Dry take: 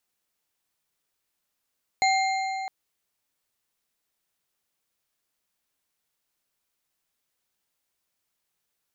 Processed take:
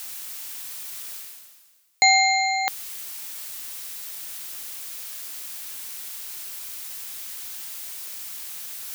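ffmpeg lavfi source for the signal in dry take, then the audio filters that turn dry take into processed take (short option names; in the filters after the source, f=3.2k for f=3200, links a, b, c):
-f lavfi -i "aevalsrc='0.106*pow(10,-3*t/3.45)*sin(2*PI*767*t)+0.0668*pow(10,-3*t/2.545)*sin(2*PI*2114.6*t)+0.0422*pow(10,-3*t/2.08)*sin(2*PI*4144.9*t)+0.0266*pow(10,-3*t/1.789)*sin(2*PI*6851.6*t)':d=0.66:s=44100"
-af "areverse,acompressor=mode=upward:threshold=-25dB:ratio=2.5,areverse,crystalizer=i=10:c=0,highshelf=f=4.2k:g=-10.5"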